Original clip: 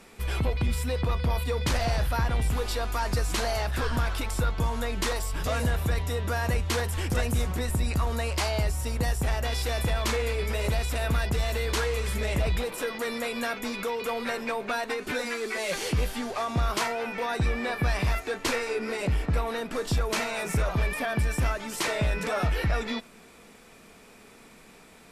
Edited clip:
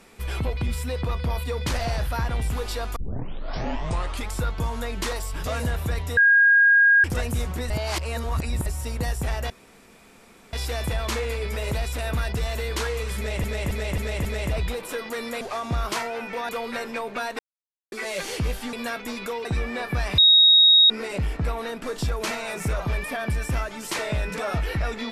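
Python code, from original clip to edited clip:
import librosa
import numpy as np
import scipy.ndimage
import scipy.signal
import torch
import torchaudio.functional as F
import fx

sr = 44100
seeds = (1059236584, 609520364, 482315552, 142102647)

y = fx.edit(x, sr, fx.tape_start(start_s=2.96, length_s=1.36),
    fx.bleep(start_s=6.17, length_s=0.87, hz=1630.0, db=-12.5),
    fx.reverse_span(start_s=7.7, length_s=0.96),
    fx.insert_room_tone(at_s=9.5, length_s=1.03),
    fx.repeat(start_s=12.14, length_s=0.27, count=5),
    fx.swap(start_s=13.3, length_s=0.72, other_s=16.26, other_length_s=1.08),
    fx.silence(start_s=14.92, length_s=0.53),
    fx.bleep(start_s=18.07, length_s=0.72, hz=3770.0, db=-11.0), tone=tone)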